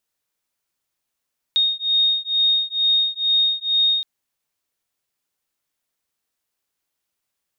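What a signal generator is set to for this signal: beating tones 3.71 kHz, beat 2.2 Hz, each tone -19.5 dBFS 2.47 s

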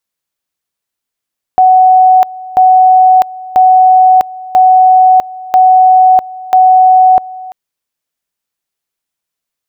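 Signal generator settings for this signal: two-level tone 745 Hz -2 dBFS, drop 20.5 dB, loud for 0.65 s, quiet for 0.34 s, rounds 6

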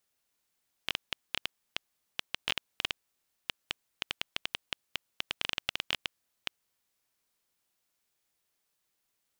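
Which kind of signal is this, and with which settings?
random clicks 7.7 per s -11.5 dBFS 5.87 s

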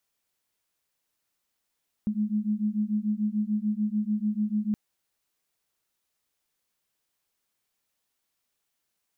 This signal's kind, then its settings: beating tones 208 Hz, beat 6.8 Hz, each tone -27.5 dBFS 2.67 s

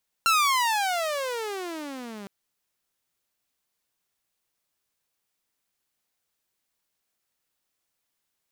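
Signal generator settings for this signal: gliding synth tone saw, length 2.01 s, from 1.38 kHz, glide -34 st, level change -20 dB, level -15 dB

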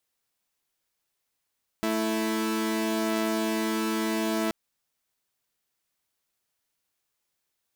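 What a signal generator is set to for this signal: chord A3/E4 saw, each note -25.5 dBFS 2.68 s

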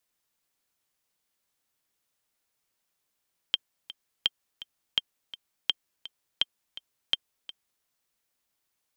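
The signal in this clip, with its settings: metronome 167 bpm, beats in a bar 2, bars 6, 3.16 kHz, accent 16.5 dB -9.5 dBFS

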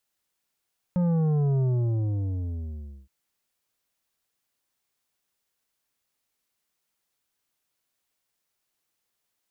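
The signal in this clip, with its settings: sub drop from 180 Hz, over 2.12 s, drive 9 dB, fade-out 1.48 s, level -21.5 dB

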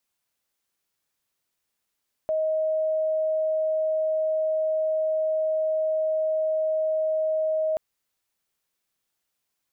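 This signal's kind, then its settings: tone sine 629 Hz -21.5 dBFS 5.48 s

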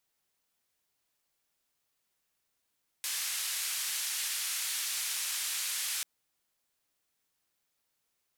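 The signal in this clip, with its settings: noise band 1.8–12 kHz, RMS -34.5 dBFS 2.99 s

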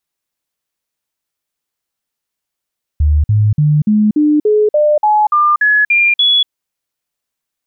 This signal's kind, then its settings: stepped sine 74.9 Hz up, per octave 2, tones 12, 0.24 s, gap 0.05 s -7.5 dBFS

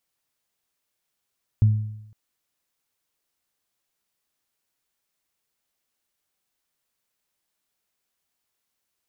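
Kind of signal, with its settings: additive tone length 0.51 s, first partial 107 Hz, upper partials -17 dB, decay 0.82 s, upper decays 0.73 s, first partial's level -11 dB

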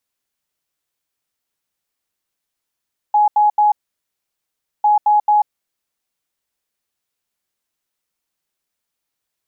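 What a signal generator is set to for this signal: beep pattern sine 838 Hz, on 0.14 s, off 0.08 s, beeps 3, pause 1.12 s, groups 2, -9.5 dBFS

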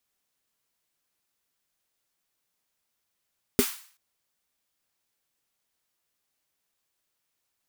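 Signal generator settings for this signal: snare drum length 0.38 s, tones 250 Hz, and 400 Hz, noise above 1 kHz, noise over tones -9.5 dB, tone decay 0.08 s, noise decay 0.48 s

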